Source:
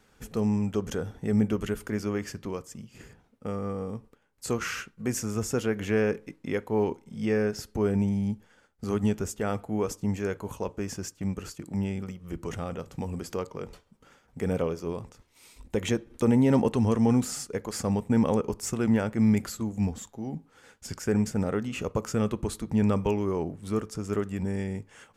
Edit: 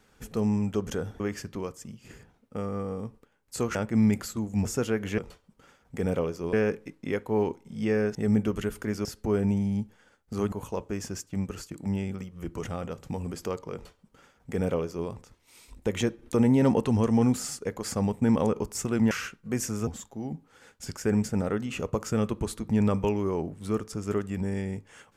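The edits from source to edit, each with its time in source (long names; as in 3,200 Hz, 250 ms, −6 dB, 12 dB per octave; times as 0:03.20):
0:01.20–0:02.10: move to 0:07.56
0:04.65–0:05.41: swap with 0:18.99–0:19.89
0:09.03–0:10.40: remove
0:13.61–0:14.96: duplicate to 0:05.94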